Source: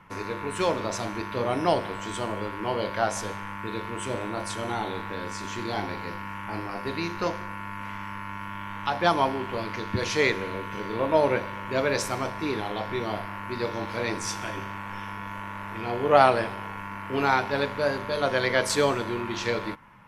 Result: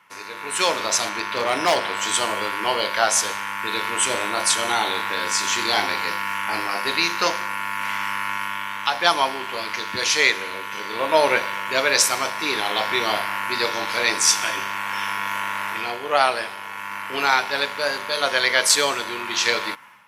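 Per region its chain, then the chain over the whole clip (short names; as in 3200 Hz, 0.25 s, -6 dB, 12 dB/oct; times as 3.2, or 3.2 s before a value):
1.09–1.97 high shelf 8800 Hz -11 dB + hard clip -19 dBFS
whole clip: HPF 1000 Hz 6 dB/oct; high shelf 2400 Hz +9 dB; AGC gain up to 13 dB; gain -1.5 dB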